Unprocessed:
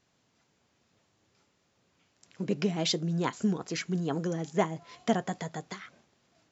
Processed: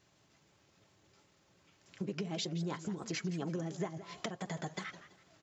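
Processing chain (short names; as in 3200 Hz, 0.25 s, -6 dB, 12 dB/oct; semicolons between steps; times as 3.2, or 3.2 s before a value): compressor 16:1, threshold -37 dBFS, peak gain reduction 18.5 dB; notch comb 240 Hz; tempo 1.2×; warbling echo 0.165 s, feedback 31%, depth 173 cents, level -14 dB; gain +4 dB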